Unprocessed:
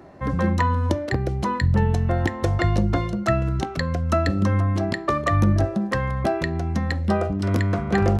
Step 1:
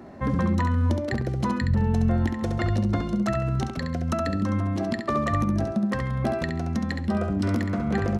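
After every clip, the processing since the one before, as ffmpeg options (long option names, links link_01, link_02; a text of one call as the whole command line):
ffmpeg -i in.wav -filter_complex "[0:a]equalizer=frequency=230:width=7.4:gain=13.5,alimiter=limit=-16dB:level=0:latency=1:release=380,asplit=2[link_01][link_02];[link_02]aecho=0:1:68|136|204:0.501|0.13|0.0339[link_03];[link_01][link_03]amix=inputs=2:normalize=0" out.wav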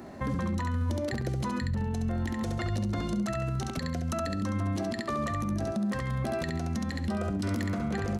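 ffmpeg -i in.wav -af "highshelf=frequency=3800:gain=11,alimiter=limit=-22dB:level=0:latency=1:release=63,bandreject=frequency=5400:width=26,volume=-1dB" out.wav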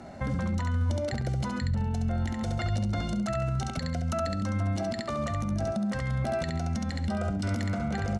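ffmpeg -i in.wav -af "lowpass=frequency=9800:width=0.5412,lowpass=frequency=9800:width=1.3066,aecho=1:1:1.4:0.48" out.wav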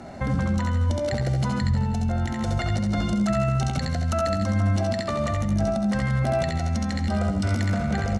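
ffmpeg -i in.wav -af "aecho=1:1:83|166|249|332|415|498|581:0.398|0.223|0.125|0.0699|0.0392|0.0219|0.0123,volume=4.5dB" out.wav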